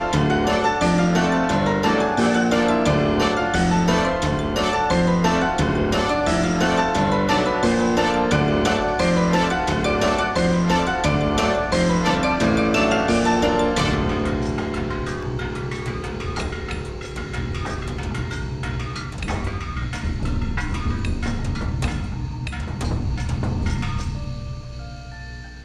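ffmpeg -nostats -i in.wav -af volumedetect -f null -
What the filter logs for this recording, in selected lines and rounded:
mean_volume: -20.8 dB
max_volume: -6.3 dB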